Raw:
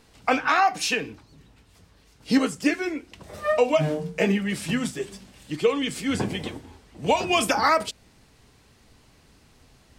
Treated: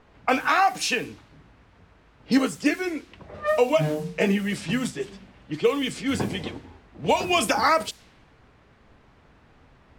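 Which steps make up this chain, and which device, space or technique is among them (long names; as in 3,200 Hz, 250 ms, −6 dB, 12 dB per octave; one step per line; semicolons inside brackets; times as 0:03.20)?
cassette deck with a dynamic noise filter (white noise bed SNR 24 dB; low-pass that shuts in the quiet parts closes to 1,400 Hz, open at −21.5 dBFS)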